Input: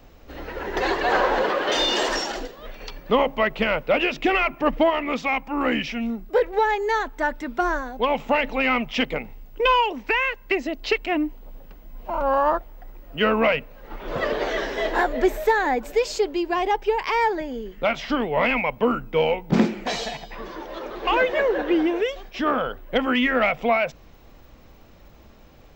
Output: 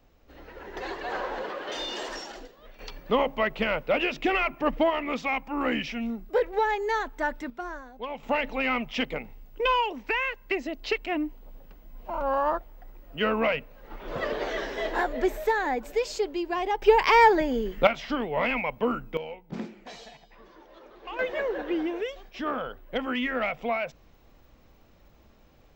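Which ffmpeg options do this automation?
-af "asetnsamples=n=441:p=0,asendcmd='2.79 volume volume -4.5dB;7.5 volume volume -13.5dB;8.23 volume volume -5.5dB;16.82 volume volume 4dB;17.87 volume volume -5.5dB;19.17 volume volume -17dB;21.19 volume volume -8dB',volume=0.251"

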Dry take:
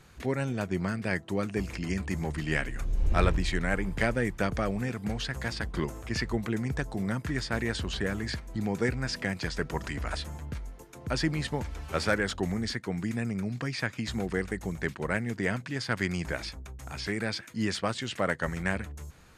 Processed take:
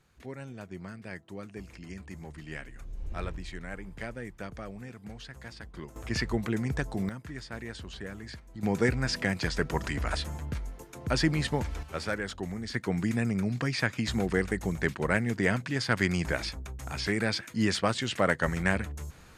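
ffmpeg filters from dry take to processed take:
-af "asetnsamples=n=441:p=0,asendcmd='5.96 volume volume 0.5dB;7.09 volume volume -9.5dB;8.63 volume volume 2.5dB;11.83 volume volume -5.5dB;12.74 volume volume 3dB',volume=0.266"

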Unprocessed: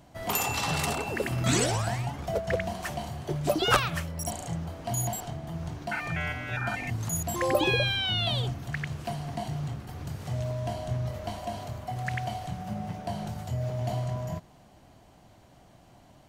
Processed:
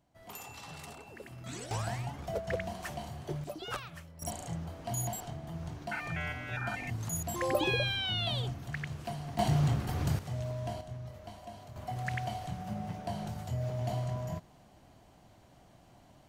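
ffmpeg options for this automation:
-af "asetnsamples=n=441:p=0,asendcmd='1.71 volume volume -6dB;3.44 volume volume -16dB;4.22 volume volume -5dB;9.39 volume volume 6dB;10.19 volume volume -5dB;10.81 volume volume -12dB;11.76 volume volume -3.5dB',volume=0.126"

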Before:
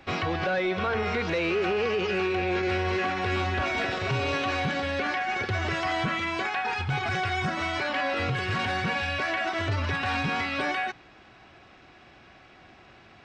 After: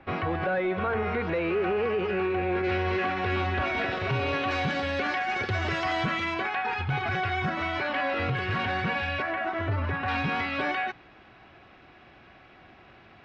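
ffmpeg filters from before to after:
-af "asetnsamples=n=441:p=0,asendcmd='2.64 lowpass f 3400;4.51 lowpass f 6100;6.34 lowpass f 3200;9.22 lowpass f 1800;10.08 lowpass f 3500',lowpass=2000"

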